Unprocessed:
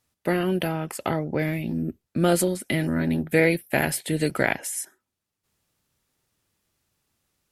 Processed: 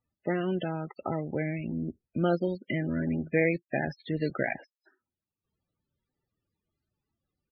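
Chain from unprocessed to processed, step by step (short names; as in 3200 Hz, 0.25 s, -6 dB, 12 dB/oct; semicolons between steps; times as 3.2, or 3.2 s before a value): loudest bins only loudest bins 32; downsampling 11025 Hz; gain -5.5 dB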